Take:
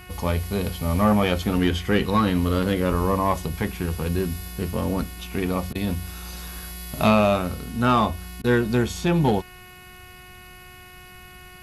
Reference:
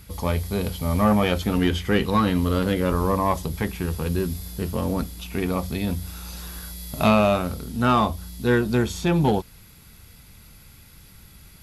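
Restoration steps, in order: de-hum 364.4 Hz, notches 8; interpolate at 5.73/8.42 s, 20 ms

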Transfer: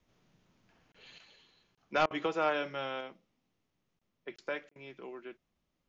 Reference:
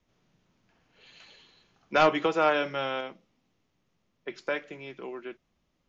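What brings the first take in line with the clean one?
interpolate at 0.92/1.75/3.99/4.36/4.69 s, 25 ms; interpolate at 2.06/4.71 s, 46 ms; gain correction +6.5 dB, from 1.18 s

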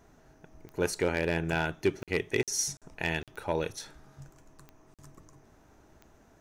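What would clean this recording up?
clip repair -17.5 dBFS; de-click; interpolate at 2.03/2.43/2.77/3.23/4.94 s, 47 ms

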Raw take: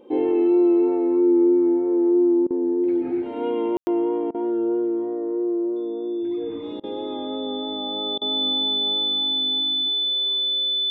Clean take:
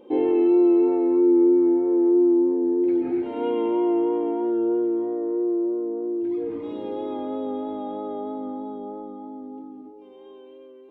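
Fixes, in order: band-stop 3.5 kHz, Q 30; room tone fill 3.77–3.87 s; interpolate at 2.47/4.31/6.80/8.18 s, 34 ms

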